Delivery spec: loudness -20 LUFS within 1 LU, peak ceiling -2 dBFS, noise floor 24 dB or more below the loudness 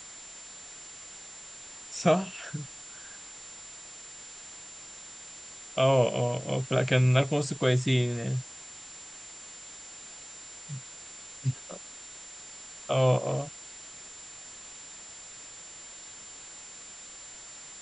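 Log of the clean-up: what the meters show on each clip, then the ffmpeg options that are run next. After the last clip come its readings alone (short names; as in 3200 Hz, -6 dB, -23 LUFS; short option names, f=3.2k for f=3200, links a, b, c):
steady tone 7200 Hz; tone level -45 dBFS; noise floor -46 dBFS; noise floor target -52 dBFS; loudness -28.0 LUFS; peak -10.5 dBFS; loudness target -20.0 LUFS
-> -af "bandreject=f=7.2k:w=30"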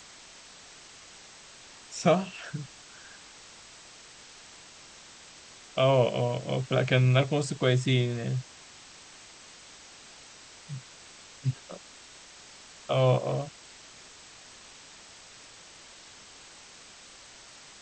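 steady tone none; noise floor -51 dBFS; noise floor target -52 dBFS
-> -af "afftdn=nr=6:nf=-51"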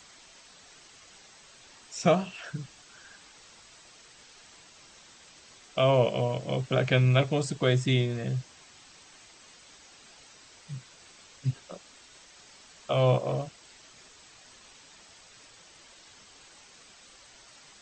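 noise floor -55 dBFS; loudness -27.5 LUFS; peak -10.5 dBFS; loudness target -20.0 LUFS
-> -af "volume=7.5dB"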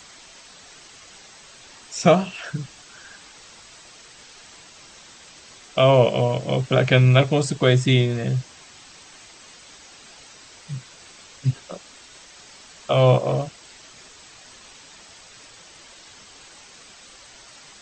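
loudness -20.0 LUFS; peak -3.0 dBFS; noise floor -47 dBFS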